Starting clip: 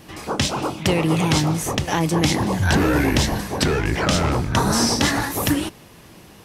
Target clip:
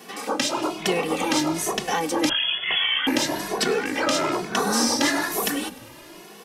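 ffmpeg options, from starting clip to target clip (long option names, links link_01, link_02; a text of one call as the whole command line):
ffmpeg -i in.wav -filter_complex "[0:a]highpass=frequency=240:width=0.5412,highpass=frequency=240:width=1.3066,asplit=2[link_01][link_02];[link_02]acompressor=threshold=-31dB:ratio=6,volume=0dB[link_03];[link_01][link_03]amix=inputs=2:normalize=0,asoftclip=type=tanh:threshold=-5.5dB,asplit=2[link_04][link_05];[link_05]asplit=5[link_06][link_07][link_08][link_09][link_10];[link_06]adelay=101,afreqshift=-58,volume=-20dB[link_11];[link_07]adelay=202,afreqshift=-116,volume=-24.6dB[link_12];[link_08]adelay=303,afreqshift=-174,volume=-29.2dB[link_13];[link_09]adelay=404,afreqshift=-232,volume=-33.7dB[link_14];[link_10]adelay=505,afreqshift=-290,volume=-38.3dB[link_15];[link_11][link_12][link_13][link_14][link_15]amix=inputs=5:normalize=0[link_16];[link_04][link_16]amix=inputs=2:normalize=0,asettb=1/sr,asplit=3[link_17][link_18][link_19];[link_17]atrim=end=2.294[link_20];[link_18]atrim=start=2.29:end=3.07,asetpts=PTS-STARTPTS,afade=type=in:duration=0.004:curve=qsin,afade=type=out:start_time=0.776:duration=0.004:curve=qsin,lowpass=frequency=3100:width_type=q:width=0.5098,lowpass=frequency=3100:width_type=q:width=0.6013,lowpass=frequency=3100:width_type=q:width=0.9,lowpass=frequency=3100:width_type=q:width=2.563,afreqshift=-3600[link_21];[link_19]atrim=start=3.066[link_22];[link_20][link_21]acrossfade=duration=0.004:curve1=hsin:curve2=qsin[link_23];[link_23][link_22]acrossfade=duration=0.004:curve1=qsin:curve2=hsin,asplit=2[link_24][link_25];[link_25]adelay=2.3,afreqshift=1.1[link_26];[link_24][link_26]amix=inputs=2:normalize=1" out.wav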